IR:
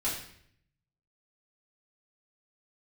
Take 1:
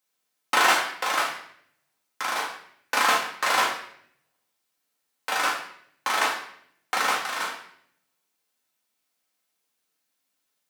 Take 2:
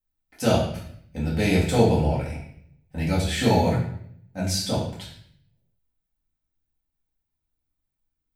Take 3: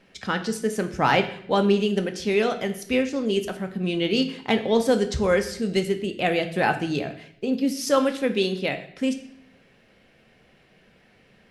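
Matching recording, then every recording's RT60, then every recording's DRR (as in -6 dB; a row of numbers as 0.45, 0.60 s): 2; 0.65, 0.65, 0.65 s; -3.5, -8.5, 6.5 dB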